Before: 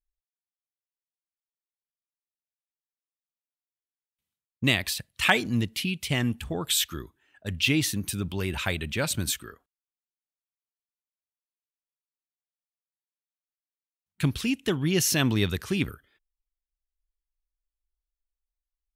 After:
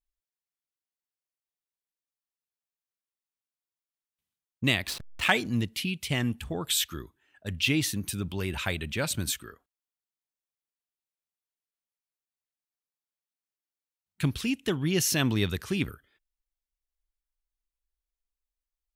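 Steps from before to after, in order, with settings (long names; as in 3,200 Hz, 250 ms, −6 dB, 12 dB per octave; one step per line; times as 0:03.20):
0:04.87–0:05.32: slack as between gear wheels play −27.5 dBFS
level −2 dB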